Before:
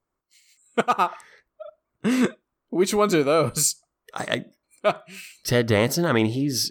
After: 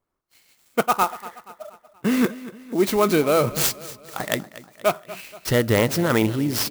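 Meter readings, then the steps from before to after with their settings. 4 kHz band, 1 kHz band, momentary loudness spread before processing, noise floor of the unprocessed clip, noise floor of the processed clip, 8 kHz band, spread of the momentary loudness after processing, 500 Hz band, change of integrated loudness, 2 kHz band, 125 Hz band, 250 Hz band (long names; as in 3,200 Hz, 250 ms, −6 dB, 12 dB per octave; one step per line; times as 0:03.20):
−0.5 dB, +1.0 dB, 13 LU, −82 dBFS, −64 dBFS, −2.5 dB, 18 LU, +1.0 dB, +1.0 dB, +1.0 dB, +1.0 dB, +1.0 dB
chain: repeating echo 238 ms, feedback 49%, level −17 dB
converter with an unsteady clock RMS 0.032 ms
level +1 dB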